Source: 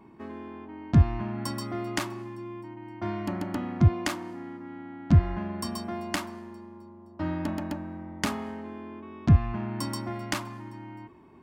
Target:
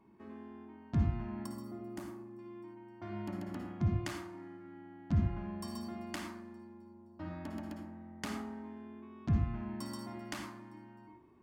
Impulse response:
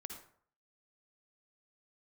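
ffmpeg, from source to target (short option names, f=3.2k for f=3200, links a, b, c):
-filter_complex "[0:a]asettb=1/sr,asplit=3[a][b][c];[a]atrim=end=1.464[d];[b]atrim=start=1.46:end=2.39,asetpts=PTS-STARTPTS,afade=t=in:d=0.004:c=qsin,afade=t=out:st=0.926:d=0.004:c=qsin,equalizer=f=3.2k:w=0.35:g=-14[e];[c]atrim=start=2.386[f];[d][e]acrossfade=d=0.004:c1=hsin:c2=qsin[g];[g][f]acrossfade=d=0.004:c1=qsin:c2=hsin[h];[1:a]atrim=start_sample=2205[i];[h][i]afir=irnorm=-1:irlink=0,volume=-7dB"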